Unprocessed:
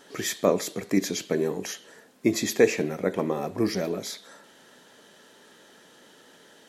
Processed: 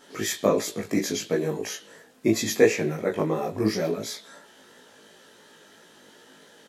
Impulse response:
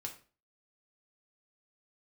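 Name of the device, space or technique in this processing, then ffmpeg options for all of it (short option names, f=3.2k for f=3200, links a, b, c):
double-tracked vocal: -filter_complex "[0:a]asplit=2[a][b];[b]adelay=19,volume=-3.5dB[c];[a][c]amix=inputs=2:normalize=0,flanger=delay=16.5:depth=3.3:speed=2.9,volume=2.5dB"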